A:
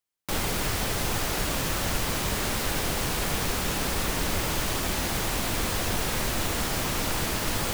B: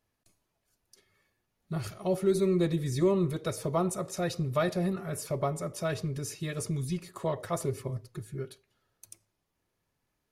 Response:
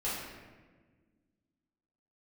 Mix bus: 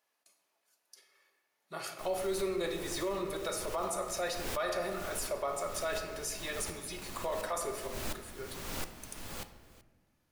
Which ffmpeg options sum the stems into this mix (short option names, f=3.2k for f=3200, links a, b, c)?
-filter_complex "[0:a]acrusher=bits=4:mix=0:aa=0.5,aeval=exprs='val(0)*pow(10,-23*if(lt(mod(-1.4*n/s,1),2*abs(-1.4)/1000),1-mod(-1.4*n/s,1)/(2*abs(-1.4)/1000),(mod(-1.4*n/s,1)-2*abs(-1.4)/1000)/(1-2*abs(-1.4)/1000))/20)':c=same,adelay=1700,volume=-9.5dB,asplit=3[a][b][c];[b]volume=-13dB[d];[c]volume=-18dB[e];[1:a]highpass=610,volume=0.5dB,asplit=3[f][g][h];[g]volume=-8dB[i];[h]apad=whole_len=415931[j];[a][j]sidechaincompress=threshold=-45dB:ratio=8:attack=49:release=176[k];[2:a]atrim=start_sample=2205[l];[d][i]amix=inputs=2:normalize=0[m];[m][l]afir=irnorm=-1:irlink=0[n];[e]aecho=0:1:379:1[o];[k][f][n][o]amix=inputs=4:normalize=0,alimiter=level_in=1.5dB:limit=-24dB:level=0:latency=1:release=28,volume=-1.5dB"